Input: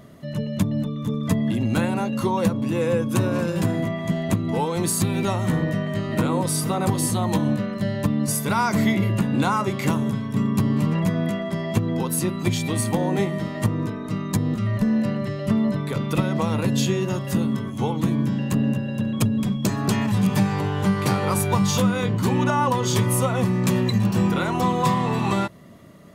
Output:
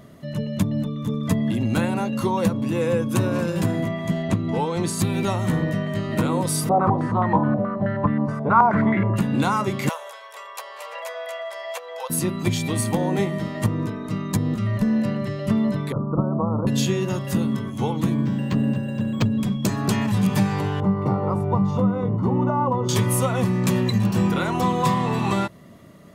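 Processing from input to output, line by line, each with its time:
0:04.22–0:04.99: high-frequency loss of the air 51 metres
0:06.69–0:09.16: low-pass on a step sequencer 9.4 Hz 720–1,700 Hz
0:09.89–0:12.10: Chebyshev high-pass filter 500 Hz, order 6
0:15.92–0:16.67: Butterworth low-pass 1,300 Hz 72 dB per octave
0:18.14–0:19.33: linearly interpolated sample-rate reduction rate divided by 4×
0:20.80–0:22.89: Savitzky-Golay smoothing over 65 samples
0:23.43–0:24.46: floating-point word with a short mantissa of 8 bits

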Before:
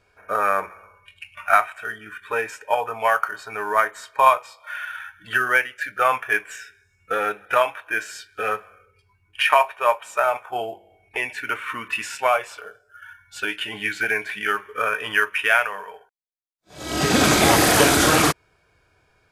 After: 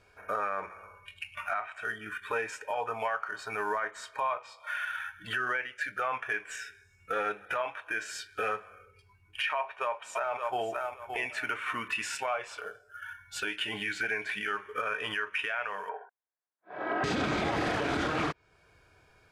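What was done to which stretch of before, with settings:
0:09.58–0:10.69: delay throw 570 ms, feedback 15%, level −11 dB
0:15.89–0:17.04: loudspeaker in its box 320–2,100 Hz, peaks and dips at 400 Hz +4 dB, 710 Hz +7 dB, 1,000 Hz +6 dB, 1,600 Hz +8 dB
whole clip: treble cut that deepens with the level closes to 2,900 Hz, closed at −13 dBFS; downward compressor 1.5 to 1, threshold −36 dBFS; brickwall limiter −21.5 dBFS

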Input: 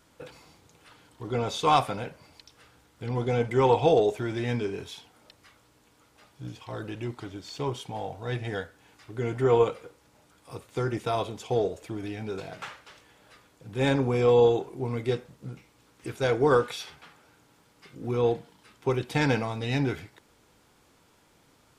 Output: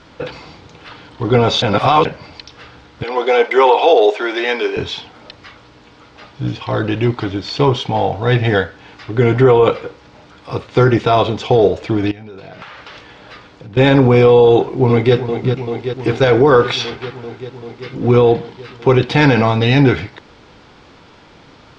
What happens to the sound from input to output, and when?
0:01.62–0:02.05: reverse
0:03.03–0:04.77: Bessel high-pass filter 540 Hz, order 6
0:12.11–0:13.77: downward compressor 20 to 1, threshold −48 dBFS
0:14.50–0:15.15: delay throw 390 ms, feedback 80%, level −11 dB
whole clip: low-pass filter 4,900 Hz 24 dB per octave; boost into a limiter +19.5 dB; level −1 dB

